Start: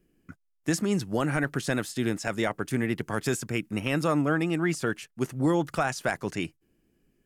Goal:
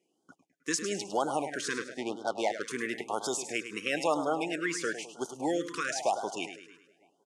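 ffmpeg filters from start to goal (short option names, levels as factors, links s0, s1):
-filter_complex "[0:a]asplit=2[s0][s1];[s1]adelay=319,lowpass=f=2500:p=1,volume=0.0708,asplit=2[s2][s3];[s3]adelay=319,lowpass=f=2500:p=1,volume=0.4,asplit=2[s4][s5];[s5]adelay=319,lowpass=f=2500:p=1,volume=0.4[s6];[s2][s4][s6]amix=inputs=3:normalize=0[s7];[s0][s7]amix=inputs=2:normalize=0,asettb=1/sr,asplit=3[s8][s9][s10];[s8]atrim=end=1.704[s11];[s9]atrim=start=1.7:end=2.62,asetpts=PTS-STARTPTS,afade=t=in:d=0.004:c=qsin,afade=t=out:st=0.916:d=0.004:c=qsin,adynamicsmooth=sensitivity=4:basefreq=750[s12];[s10]atrim=start=2.616[s13];[s11][s12]acrossfade=d=0.004:c1=hsin:c2=qsin[s14];[s14][s13]acrossfade=d=0.004:c1=qsin:c2=hsin,highpass=470,equalizer=f=810:t=q:w=4:g=9,equalizer=f=1300:t=q:w=4:g=-7,equalizer=f=6200:t=q:w=4:g=4,lowpass=f=9600:w=0.5412,lowpass=f=9600:w=1.3066,asplit=2[s15][s16];[s16]aecho=0:1:104|208|312|416|520:0.299|0.14|0.0659|0.031|0.0146[s17];[s15][s17]amix=inputs=2:normalize=0,afftfilt=real='re*(1-between(b*sr/1024,690*pow(2200/690,0.5+0.5*sin(2*PI*1*pts/sr))/1.41,690*pow(2200/690,0.5+0.5*sin(2*PI*1*pts/sr))*1.41))':imag='im*(1-between(b*sr/1024,690*pow(2200/690,0.5+0.5*sin(2*PI*1*pts/sr))/1.41,690*pow(2200/690,0.5+0.5*sin(2*PI*1*pts/sr))*1.41))':win_size=1024:overlap=0.75"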